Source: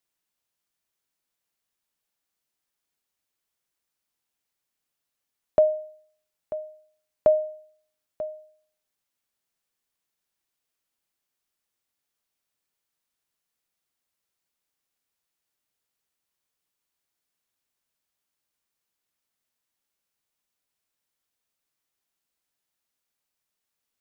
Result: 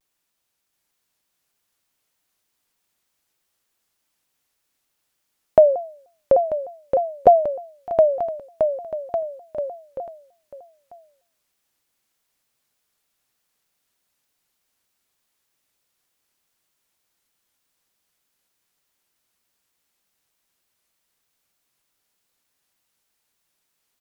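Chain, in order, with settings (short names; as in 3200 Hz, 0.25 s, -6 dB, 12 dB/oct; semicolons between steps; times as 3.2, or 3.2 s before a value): bouncing-ball echo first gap 0.73 s, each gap 0.85×, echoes 5; shaped vibrato saw down 3.3 Hz, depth 250 cents; gain +7 dB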